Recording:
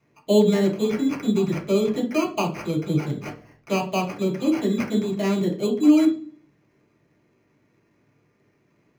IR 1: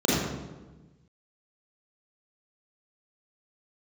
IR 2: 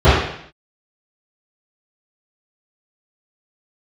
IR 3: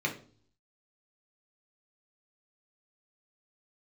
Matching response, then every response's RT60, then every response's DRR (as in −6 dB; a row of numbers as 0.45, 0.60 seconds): 3; 1.2, 0.65, 0.45 seconds; −7.5, −19.0, −0.5 decibels